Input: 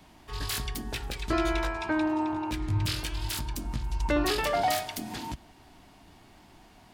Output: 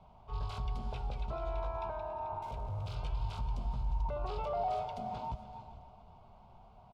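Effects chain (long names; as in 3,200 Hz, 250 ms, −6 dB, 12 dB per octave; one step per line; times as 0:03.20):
low-pass filter 1,700 Hz 12 dB per octave
brickwall limiter −26.5 dBFS, peak gain reduction 11 dB
0:02.42–0:02.95: gain into a clipping stage and back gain 34.5 dB
phaser with its sweep stopped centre 740 Hz, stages 4
repeating echo 281 ms, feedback 50%, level −16.5 dB
reverb whose tail is shaped and stops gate 470 ms rising, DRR 10.5 dB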